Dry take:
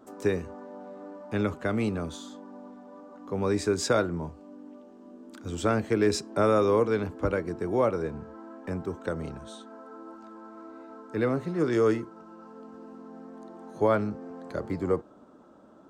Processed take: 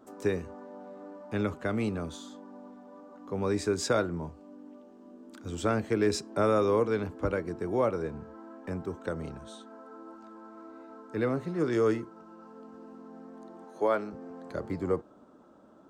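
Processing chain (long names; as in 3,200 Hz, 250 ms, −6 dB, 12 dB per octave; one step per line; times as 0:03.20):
0:13.64–0:14.13: high-pass filter 310 Hz 12 dB per octave
level −2.5 dB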